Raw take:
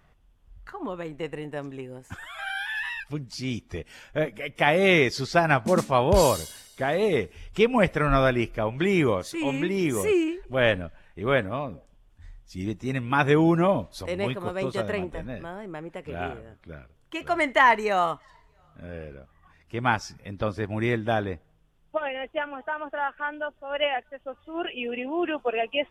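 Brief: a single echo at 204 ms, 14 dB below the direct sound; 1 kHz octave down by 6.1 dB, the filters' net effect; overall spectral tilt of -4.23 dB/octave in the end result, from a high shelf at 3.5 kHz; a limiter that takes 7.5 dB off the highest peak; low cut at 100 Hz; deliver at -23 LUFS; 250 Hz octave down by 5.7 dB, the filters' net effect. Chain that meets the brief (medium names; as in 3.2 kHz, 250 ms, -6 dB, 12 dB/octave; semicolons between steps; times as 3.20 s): high-pass 100 Hz; peaking EQ 250 Hz -8 dB; peaking EQ 1 kHz -7 dB; treble shelf 3.5 kHz -6 dB; peak limiter -17 dBFS; delay 204 ms -14 dB; trim +8.5 dB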